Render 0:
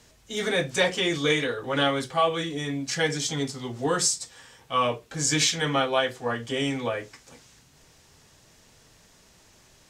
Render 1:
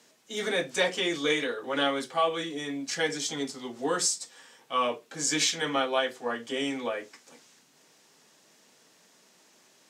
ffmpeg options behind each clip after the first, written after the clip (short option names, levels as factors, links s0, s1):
-af "highpass=f=200:w=0.5412,highpass=f=200:w=1.3066,volume=0.708"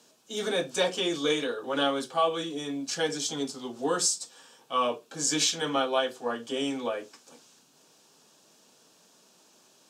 -af "equalizer=f=2000:t=o:w=0.32:g=-14,volume=1.12"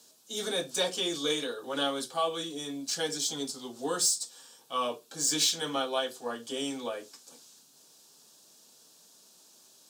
-af "aexciter=amount=1.2:drive=9.6:freq=3600,volume=0.596"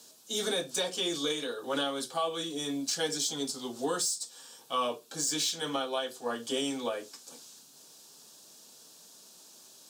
-af "alimiter=level_in=1.06:limit=0.0631:level=0:latency=1:release=491,volume=0.944,volume=1.58"